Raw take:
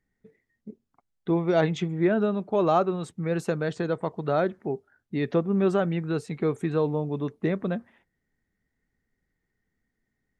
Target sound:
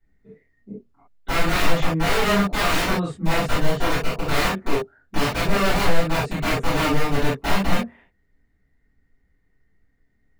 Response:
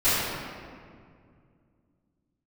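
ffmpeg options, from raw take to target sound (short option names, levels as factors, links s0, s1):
-filter_complex "[0:a]aeval=exprs='(mod(14.1*val(0)+1,2)-1)/14.1':c=same,bass=f=250:g=2,treble=f=4000:g=-7[s0];[1:a]atrim=start_sample=2205,atrim=end_sample=3528[s1];[s0][s1]afir=irnorm=-1:irlink=0,volume=0.501"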